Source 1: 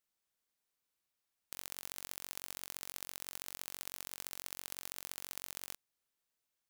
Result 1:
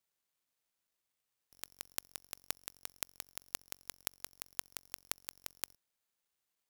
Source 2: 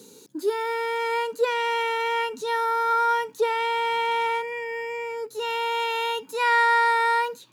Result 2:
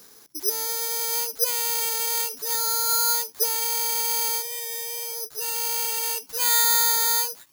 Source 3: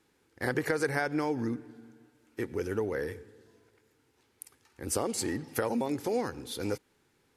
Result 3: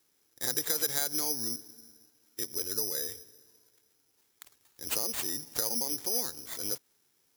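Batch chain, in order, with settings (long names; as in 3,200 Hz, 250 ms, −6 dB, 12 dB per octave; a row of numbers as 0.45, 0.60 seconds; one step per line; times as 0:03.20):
high-pass filter 51 Hz
low-shelf EQ 250 Hz −4.5 dB
bad sample-rate conversion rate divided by 8×, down none, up zero stuff
level −9 dB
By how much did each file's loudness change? 0.0, +2.0, +2.0 LU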